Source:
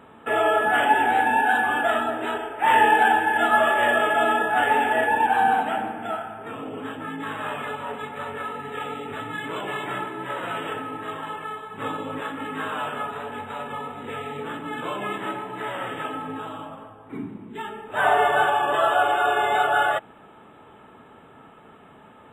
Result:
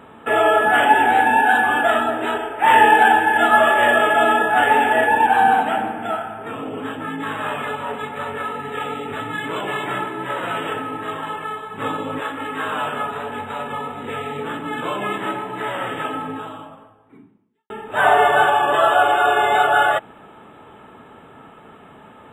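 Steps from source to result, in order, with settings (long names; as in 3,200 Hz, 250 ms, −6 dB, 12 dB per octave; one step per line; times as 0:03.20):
0:12.19–0:12.68: parametric band 190 Hz −8.5 dB 0.84 octaves
0:16.22–0:17.70: fade out quadratic
level +5 dB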